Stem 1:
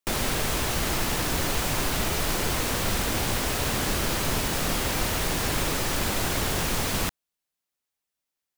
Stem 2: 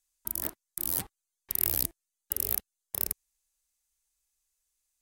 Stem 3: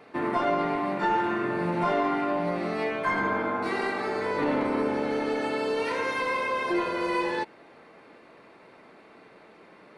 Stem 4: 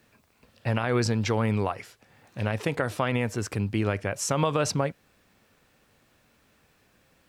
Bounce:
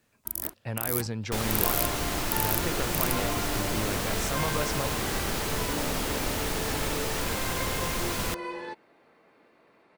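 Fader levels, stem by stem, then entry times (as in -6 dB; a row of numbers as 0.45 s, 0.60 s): -4.0 dB, 0.0 dB, -9.0 dB, -7.5 dB; 1.25 s, 0.00 s, 1.30 s, 0.00 s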